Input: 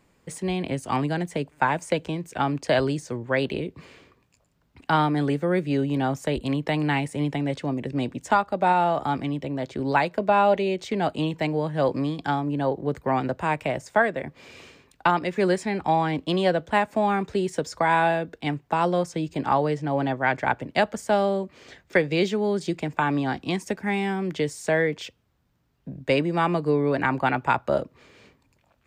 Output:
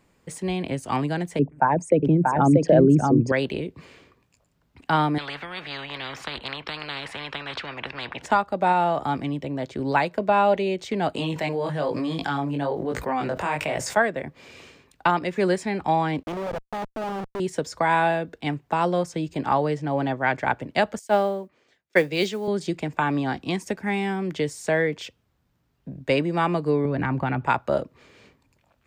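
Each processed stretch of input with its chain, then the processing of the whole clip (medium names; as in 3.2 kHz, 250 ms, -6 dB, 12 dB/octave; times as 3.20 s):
1.39–3.32 s: resonances exaggerated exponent 2 + peaking EQ 180 Hz +14 dB 2.2 oct + delay 635 ms -3 dB
5.18–8.26 s: high-pass 110 Hz + distance through air 380 m + spectrum-flattening compressor 10:1
11.15–13.97 s: bass shelf 360 Hz -6.5 dB + chorus 1.1 Hz, delay 17.5 ms, depth 4.4 ms + level flattener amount 70%
16.23–17.40 s: compression 10:1, threshold -23 dBFS + Schmitt trigger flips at -32.5 dBFS + overdrive pedal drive 17 dB, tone 1 kHz, clips at -20 dBFS
20.99–22.48 s: high-pass 210 Hz 6 dB/octave + modulation noise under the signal 31 dB + three bands expanded up and down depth 100%
26.85–27.46 s: tone controls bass +11 dB, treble -7 dB + compression 4:1, threshold -21 dBFS
whole clip: none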